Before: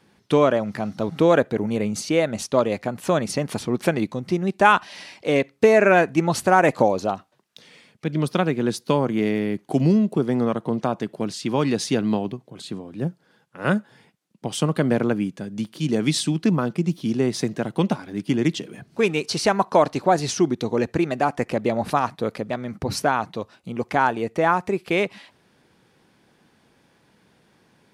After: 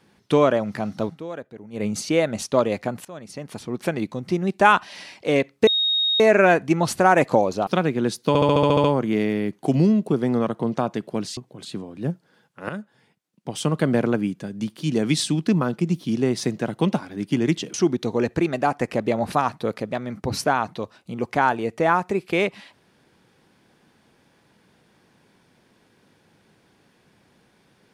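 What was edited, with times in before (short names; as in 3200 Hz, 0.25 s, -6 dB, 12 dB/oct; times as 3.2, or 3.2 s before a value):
1.04–1.85 dip -17 dB, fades 0.13 s
3.05–4.4 fade in, from -23.5 dB
5.67 add tone 3740 Hz -18 dBFS 0.53 s
7.14–8.29 cut
8.9 stutter 0.07 s, 9 plays
11.43–12.34 cut
13.66–14.79 fade in linear, from -14 dB
18.71–20.32 cut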